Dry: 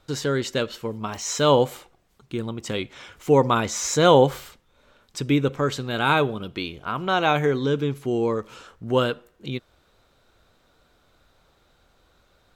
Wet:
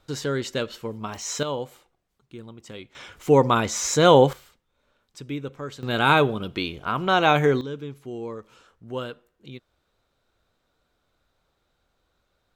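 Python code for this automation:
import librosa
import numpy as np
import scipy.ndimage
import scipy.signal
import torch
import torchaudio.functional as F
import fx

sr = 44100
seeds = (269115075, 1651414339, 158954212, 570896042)

y = fx.gain(x, sr, db=fx.steps((0.0, -2.5), (1.43, -12.0), (2.95, 0.5), (4.33, -11.0), (5.83, 2.0), (7.61, -10.5)))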